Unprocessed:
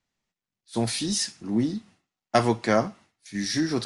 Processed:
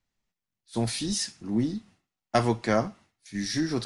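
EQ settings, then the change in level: low shelf 72 Hz +11.5 dB; -3.0 dB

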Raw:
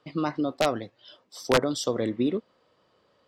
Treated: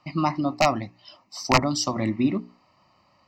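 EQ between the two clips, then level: high shelf 10000 Hz -7 dB; notches 60/120/180/240/300/360/420 Hz; fixed phaser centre 2300 Hz, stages 8; +9.0 dB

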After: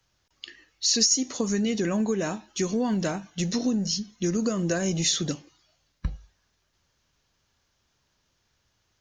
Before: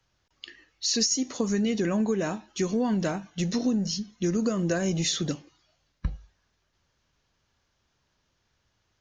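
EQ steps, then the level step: high shelf 5000 Hz +7 dB; 0.0 dB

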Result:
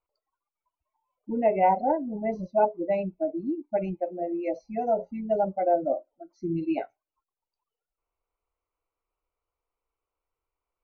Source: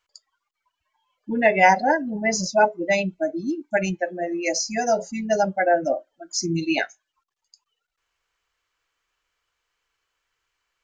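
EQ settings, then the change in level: running mean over 26 samples; air absorption 310 m; bell 150 Hz -6.5 dB 1.6 oct; 0.0 dB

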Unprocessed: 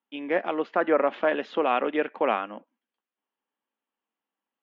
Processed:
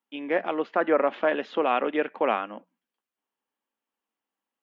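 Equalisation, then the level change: notches 60/120/180 Hz; 0.0 dB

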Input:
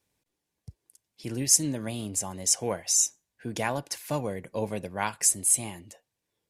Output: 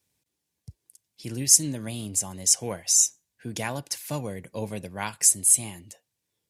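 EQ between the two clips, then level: HPF 67 Hz; low shelf 260 Hz +9 dB; high shelf 2200 Hz +10 dB; -5.5 dB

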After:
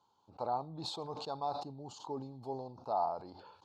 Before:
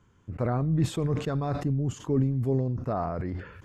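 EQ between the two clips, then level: double band-pass 1900 Hz, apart 2.3 oct; +8.0 dB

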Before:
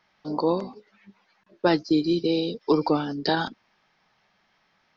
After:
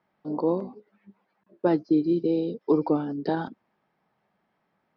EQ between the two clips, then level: band-pass 280 Hz, Q 0.53; 0.0 dB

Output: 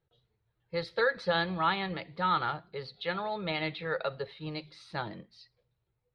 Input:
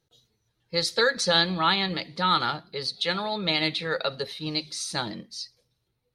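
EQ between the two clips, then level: air absorption 450 m; bell 250 Hz -10 dB 0.72 oct; -1.5 dB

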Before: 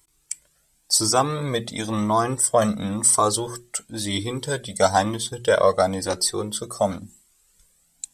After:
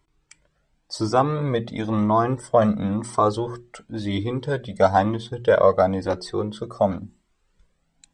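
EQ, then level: tape spacing loss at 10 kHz 32 dB; +3.5 dB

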